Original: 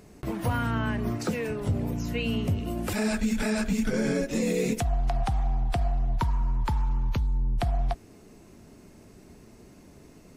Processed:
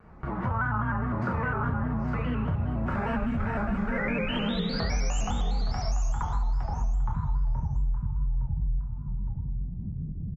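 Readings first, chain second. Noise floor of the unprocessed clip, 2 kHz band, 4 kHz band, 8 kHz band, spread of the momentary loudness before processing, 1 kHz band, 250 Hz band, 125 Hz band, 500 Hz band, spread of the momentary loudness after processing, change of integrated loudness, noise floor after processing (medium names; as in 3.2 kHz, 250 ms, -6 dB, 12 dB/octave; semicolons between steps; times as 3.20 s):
-52 dBFS, +2.0 dB, +1.0 dB, -4.0 dB, 3 LU, +2.0 dB, -2.5 dB, +0.5 dB, -4.5 dB, 6 LU, -1.5 dB, -35 dBFS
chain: low-pass sweep 1.2 kHz -> 140 Hz, 6.52–7.11 s; peaking EQ 390 Hz -10 dB 1.9 oct; painted sound rise, 3.92–5.21 s, 1.9–7.2 kHz -35 dBFS; dynamic bell 4.1 kHz, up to -6 dB, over -51 dBFS, Q 1; on a send: feedback delay 865 ms, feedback 17%, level -4 dB; on the sum: level rider gain up to 15 dB; two-slope reverb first 0.73 s, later 2.3 s, DRR -2.5 dB; compression 4:1, threshold -29 dBFS, peak gain reduction 22.5 dB; vibrato with a chosen wave square 4.9 Hz, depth 100 cents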